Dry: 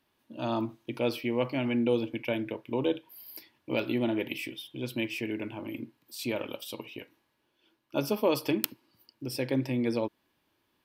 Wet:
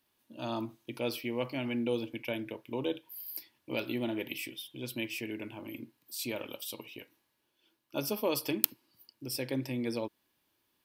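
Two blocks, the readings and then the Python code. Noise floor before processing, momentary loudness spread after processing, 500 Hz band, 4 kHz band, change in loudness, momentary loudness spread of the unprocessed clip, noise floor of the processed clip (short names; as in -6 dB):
-75 dBFS, 11 LU, -5.5 dB, -1.0 dB, -4.0 dB, 14 LU, -77 dBFS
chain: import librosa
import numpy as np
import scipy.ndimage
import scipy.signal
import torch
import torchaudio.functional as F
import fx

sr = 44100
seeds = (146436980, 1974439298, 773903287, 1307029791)

y = fx.high_shelf(x, sr, hz=4500.0, db=11.0)
y = y * librosa.db_to_amplitude(-5.5)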